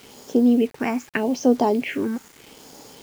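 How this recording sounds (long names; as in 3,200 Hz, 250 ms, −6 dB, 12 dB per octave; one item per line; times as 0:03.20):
phaser sweep stages 4, 0.81 Hz, lowest notch 590–2,300 Hz
a quantiser's noise floor 8 bits, dither none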